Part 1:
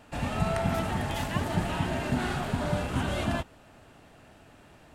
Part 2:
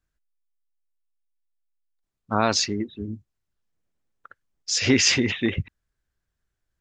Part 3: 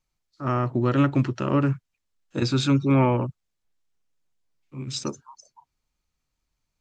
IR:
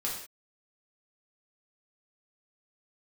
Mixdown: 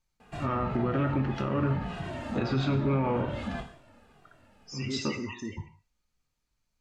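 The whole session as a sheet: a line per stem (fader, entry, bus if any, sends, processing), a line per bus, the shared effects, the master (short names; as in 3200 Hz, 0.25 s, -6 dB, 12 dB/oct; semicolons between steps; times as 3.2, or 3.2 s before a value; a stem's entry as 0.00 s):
+2.5 dB, 0.20 s, bus A, send -14 dB, endless flanger 2 ms -1.8 Hz; auto duck -11 dB, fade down 1.00 s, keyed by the third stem
-10.5 dB, 0.00 s, bus A, send -14.5 dB, loudest bins only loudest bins 16
-5.5 dB, 0.00 s, no bus, send -4.5 dB, compressor 1.5:1, threshold -24 dBFS, peak gain reduction 4 dB
bus A: 0.0 dB, high shelf 4700 Hz -10 dB; limiter -30.5 dBFS, peak gain reduction 11.5 dB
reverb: on, pre-delay 3 ms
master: treble ducked by the level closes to 2700 Hz, closed at -23.5 dBFS; limiter -18 dBFS, peak gain reduction 7 dB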